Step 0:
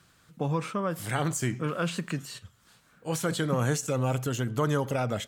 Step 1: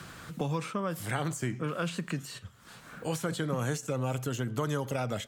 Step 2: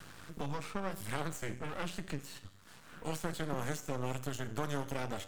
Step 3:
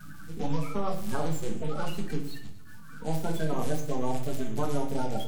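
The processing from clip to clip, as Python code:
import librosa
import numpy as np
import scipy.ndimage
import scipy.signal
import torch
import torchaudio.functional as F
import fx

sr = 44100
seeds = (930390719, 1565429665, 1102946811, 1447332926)

y1 = fx.band_squash(x, sr, depth_pct=70)
y1 = y1 * librosa.db_to_amplitude(-4.0)
y2 = fx.comb_fb(y1, sr, f0_hz=95.0, decay_s=0.89, harmonics='all', damping=0.0, mix_pct=60)
y2 = fx.vibrato(y2, sr, rate_hz=1.2, depth_cents=32.0)
y2 = np.maximum(y2, 0.0)
y2 = y2 * librosa.db_to_amplitude(5.0)
y3 = fx.spec_quant(y2, sr, step_db=30)
y3 = fx.echo_feedback(y3, sr, ms=117, feedback_pct=53, wet_db=-17.0)
y3 = fx.room_shoebox(y3, sr, seeds[0], volume_m3=310.0, walls='furnished', distance_m=1.5)
y3 = y3 * librosa.db_to_amplitude(2.5)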